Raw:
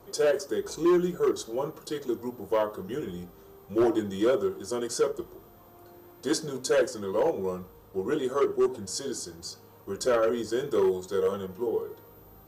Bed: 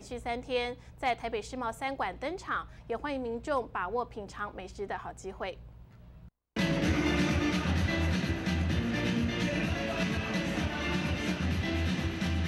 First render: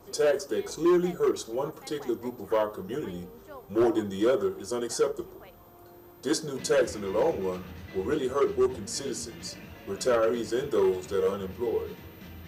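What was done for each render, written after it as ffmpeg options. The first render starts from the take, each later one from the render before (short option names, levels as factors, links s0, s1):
-filter_complex "[1:a]volume=0.178[s0];[0:a][s0]amix=inputs=2:normalize=0"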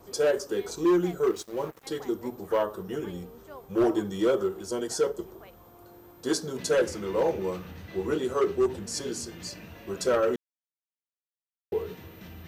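-filter_complex "[0:a]asettb=1/sr,asplit=3[s0][s1][s2];[s0]atrim=end=1.304[s3];[s1]atrim=start=1.3:end=1.86,asetpts=PTS-STARTPTS,afade=t=in:d=0.004:c=qsin,afade=t=out:st=0.556:d=0.004:c=qsin,aeval=exprs='sgn(val(0))*max(abs(val(0))-0.00531,0)':c=same[s4];[s2]atrim=start=1.856[s5];[s3][s4]acrossfade=d=0.004:c1=hsin:c2=qsin[s6];[s6][s5]acrossfade=d=0.004:c1=qsin:c2=hsin,asettb=1/sr,asplit=3[s7][s8][s9];[s7]atrim=end=4.644[s10];[s8]atrim=start=4.64:end=5.28,asetpts=PTS-STARTPTS,afade=t=in:d=0.004:c=qsin,afade=t=out:st=0.636:d=0.004:c=qsin,bandreject=f=1200:w=8.5[s11];[s9]atrim=start=5.276[s12];[s10][s11]acrossfade=d=0.004:c1=hsin:c2=qsin[s13];[s13][s12]acrossfade=d=0.004:c1=qsin:c2=hsin,asplit=3[s14][s15][s16];[s14]atrim=end=10.36,asetpts=PTS-STARTPTS,afade=t=out:st=10.356:d=0.004:c=hsin[s17];[s15]atrim=start=10.36:end=11.72,asetpts=PTS-STARTPTS,volume=0[s18];[s16]atrim=start=11.72,asetpts=PTS-STARTPTS,afade=t=in:d=0.004:c=hsin[s19];[s17][s18][s19]concat=n=3:v=0:a=1"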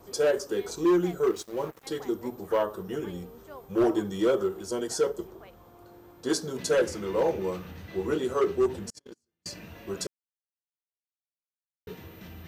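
-filter_complex "[0:a]asettb=1/sr,asplit=3[s0][s1][s2];[s0]atrim=end=5.274[s3];[s1]atrim=start=5.27:end=6.3,asetpts=PTS-STARTPTS,afade=t=in:d=0.004:c=qsin,afade=t=out:st=1.026:d=0.004:c=qsin,highshelf=f=10000:g=-9[s4];[s2]atrim=start=6.296[s5];[s3][s4]acrossfade=d=0.004:c1=hsin:c2=qsin[s6];[s6][s5]acrossfade=d=0.004:c1=qsin:c2=hsin,asettb=1/sr,asplit=3[s7][s8][s9];[s7]atrim=end=8.904[s10];[s8]atrim=start=8.9:end=9.46,asetpts=PTS-STARTPTS,afade=t=in:d=0.004:c=qsin,afade=t=out:st=0.556:d=0.004:c=qsin,agate=range=0.00631:threshold=0.0316:ratio=16:release=100:detection=peak[s11];[s9]atrim=start=9.456[s12];[s10][s11]acrossfade=d=0.004:c1=hsin:c2=qsin[s13];[s13][s12]acrossfade=d=0.004:c1=qsin:c2=hsin,asplit=3[s14][s15][s16];[s14]atrim=end=10.07,asetpts=PTS-STARTPTS,afade=t=out:st=10.066:d=0.004:c=hsin[s17];[s15]atrim=start=10.07:end=11.87,asetpts=PTS-STARTPTS,volume=0[s18];[s16]atrim=start=11.87,asetpts=PTS-STARTPTS,afade=t=in:d=0.004:c=hsin[s19];[s17][s18][s19]concat=n=3:v=0:a=1"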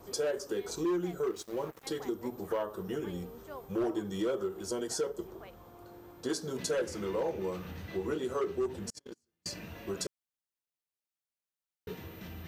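-af "acompressor=threshold=0.0224:ratio=2.5"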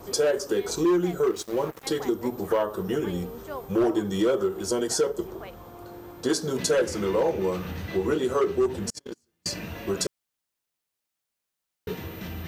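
-af "volume=2.82"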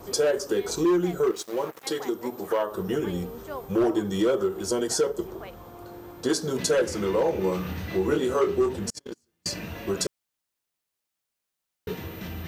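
-filter_complex "[0:a]asettb=1/sr,asplit=3[s0][s1][s2];[s0]atrim=end=1.314[s3];[s1]atrim=start=1.31:end=2.72,asetpts=PTS-STARTPTS,afade=t=in:d=0.004:c=qsin,afade=t=out:st=1.406:d=0.004:c=qsin,highpass=f=340:p=1[s4];[s2]atrim=start=2.716[s5];[s3][s4]acrossfade=d=0.004:c1=hsin:c2=qsin[s6];[s6][s5]acrossfade=d=0.004:c1=qsin:c2=hsin,asettb=1/sr,asplit=3[s7][s8][s9];[s7]atrim=end=7.304[s10];[s8]atrim=start=7.3:end=8.73,asetpts=PTS-STARTPTS,afade=t=in:d=0.004:c=qsin,afade=t=out:st=1.426:d=0.004:c=qsin,asplit=2[s11][s12];[s12]adelay=27,volume=0.501[s13];[s11][s13]amix=inputs=2:normalize=0,atrim=end_sample=63063[s14];[s9]atrim=start=8.726[s15];[s10][s14]acrossfade=d=0.004:c1=hsin:c2=qsin[s16];[s16][s15]acrossfade=d=0.004:c1=qsin:c2=hsin"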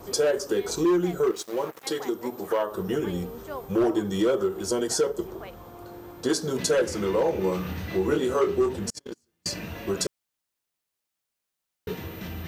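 -af anull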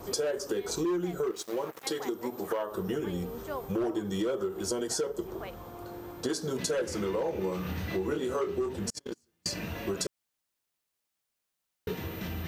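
-af "acompressor=threshold=0.0316:ratio=3"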